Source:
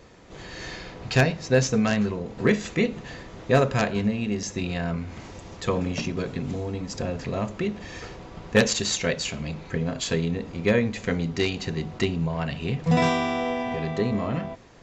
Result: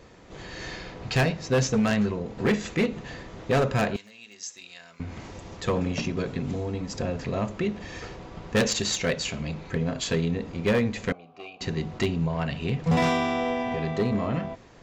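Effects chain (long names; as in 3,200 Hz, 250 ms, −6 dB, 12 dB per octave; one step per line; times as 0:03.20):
high-shelf EQ 5,100 Hz −2.5 dB
gain into a clipping stage and back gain 17.5 dB
0:03.96–0:05.00: first difference
0:11.12–0:11.61: formant filter a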